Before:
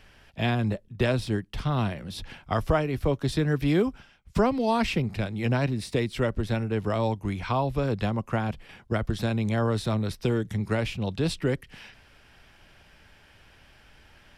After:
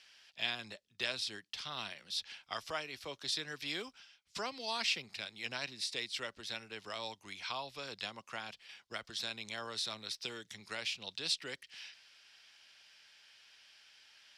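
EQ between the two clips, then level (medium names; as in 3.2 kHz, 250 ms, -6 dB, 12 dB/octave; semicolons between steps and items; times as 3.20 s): band-pass filter 4.8 kHz, Q 1.5; +4.0 dB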